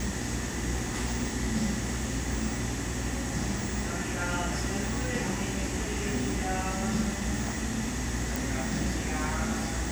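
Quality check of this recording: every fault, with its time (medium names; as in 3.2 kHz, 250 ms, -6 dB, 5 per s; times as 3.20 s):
buzz 60 Hz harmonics 20 -36 dBFS
8.36 s: pop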